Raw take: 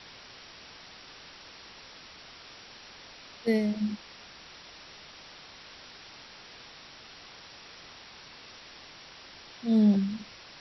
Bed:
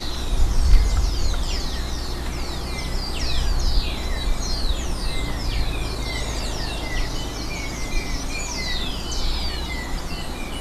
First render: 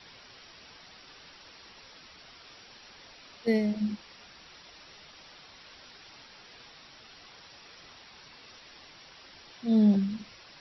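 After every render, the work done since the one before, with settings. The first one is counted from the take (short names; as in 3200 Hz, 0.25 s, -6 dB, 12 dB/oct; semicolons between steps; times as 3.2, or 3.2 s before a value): denoiser 6 dB, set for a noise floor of -50 dBFS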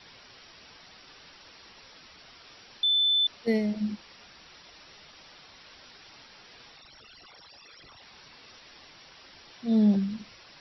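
2.83–3.27 bleep 3520 Hz -20.5 dBFS; 6.76–8.02 formant sharpening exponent 3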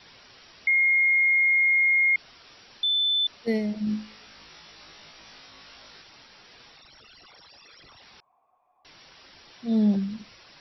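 0.67–2.16 bleep 2140 Hz -17.5 dBFS; 3.85–6.02 flutter echo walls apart 3.2 m, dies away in 0.34 s; 8.2–8.85 vocal tract filter a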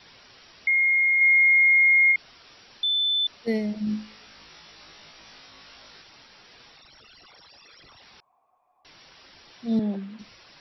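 1.21–2.12 tilt shelf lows -5 dB; 9.79–10.19 BPF 290–2900 Hz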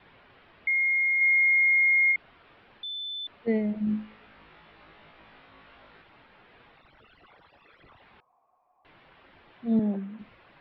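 Bessel low-pass 1900 Hz, order 8; de-hum 250.2 Hz, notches 5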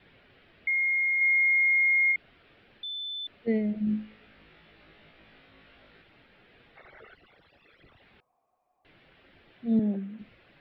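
6.76–7.15 spectral gain 360–2300 Hz +12 dB; bell 1000 Hz -11 dB 0.88 oct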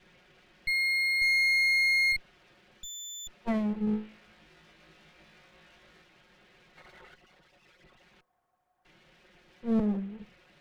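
minimum comb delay 5.5 ms; hard clip -20.5 dBFS, distortion -22 dB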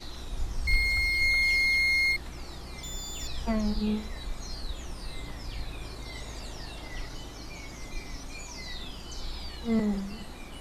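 add bed -13.5 dB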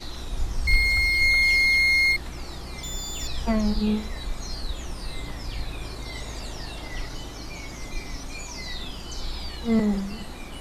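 gain +5 dB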